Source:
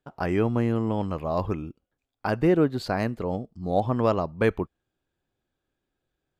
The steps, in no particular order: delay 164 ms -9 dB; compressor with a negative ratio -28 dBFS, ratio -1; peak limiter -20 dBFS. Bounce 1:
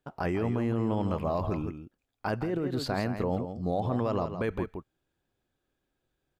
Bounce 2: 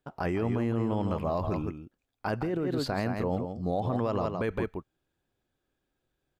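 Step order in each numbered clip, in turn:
peak limiter > delay > compressor with a negative ratio; delay > peak limiter > compressor with a negative ratio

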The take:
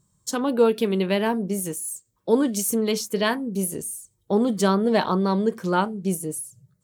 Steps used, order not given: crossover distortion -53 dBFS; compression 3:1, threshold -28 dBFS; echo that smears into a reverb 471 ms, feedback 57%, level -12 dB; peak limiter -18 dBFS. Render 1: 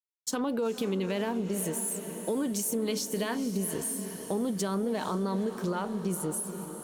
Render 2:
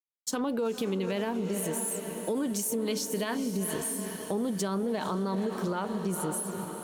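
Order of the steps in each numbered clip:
peak limiter > crossover distortion > echo that smears into a reverb > compression; echo that smears into a reverb > peak limiter > crossover distortion > compression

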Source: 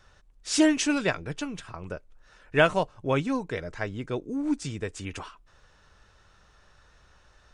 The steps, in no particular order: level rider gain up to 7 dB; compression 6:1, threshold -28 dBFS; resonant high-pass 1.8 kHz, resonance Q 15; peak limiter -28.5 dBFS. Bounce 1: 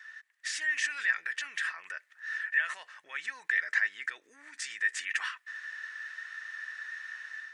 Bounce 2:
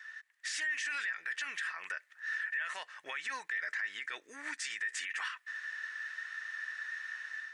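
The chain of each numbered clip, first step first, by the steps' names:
level rider > peak limiter > compression > resonant high-pass; compression > level rider > resonant high-pass > peak limiter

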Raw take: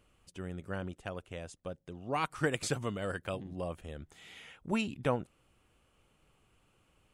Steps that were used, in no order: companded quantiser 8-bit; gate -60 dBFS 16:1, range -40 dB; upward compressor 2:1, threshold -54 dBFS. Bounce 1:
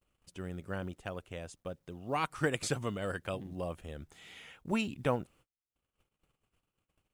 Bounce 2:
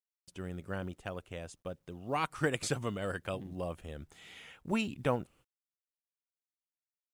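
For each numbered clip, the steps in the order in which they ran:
companded quantiser > upward compressor > gate; gate > companded quantiser > upward compressor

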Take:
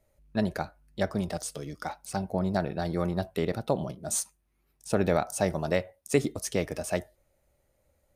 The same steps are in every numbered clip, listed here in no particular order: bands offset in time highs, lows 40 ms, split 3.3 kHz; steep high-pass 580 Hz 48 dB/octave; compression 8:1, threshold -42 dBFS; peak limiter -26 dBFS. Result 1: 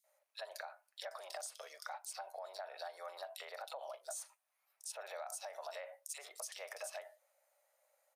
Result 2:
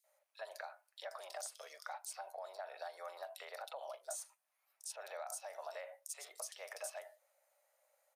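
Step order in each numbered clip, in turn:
bands offset in time > peak limiter > steep high-pass > compression; peak limiter > steep high-pass > compression > bands offset in time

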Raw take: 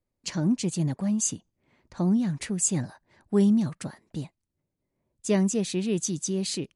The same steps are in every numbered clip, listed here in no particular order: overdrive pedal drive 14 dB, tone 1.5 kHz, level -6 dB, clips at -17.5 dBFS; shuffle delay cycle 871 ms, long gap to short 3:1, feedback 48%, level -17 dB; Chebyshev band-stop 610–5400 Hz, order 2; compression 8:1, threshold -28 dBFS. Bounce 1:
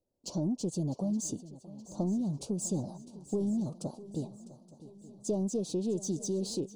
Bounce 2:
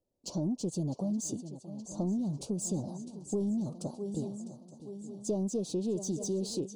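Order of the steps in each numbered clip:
overdrive pedal > Chebyshev band-stop > compression > shuffle delay; shuffle delay > overdrive pedal > compression > Chebyshev band-stop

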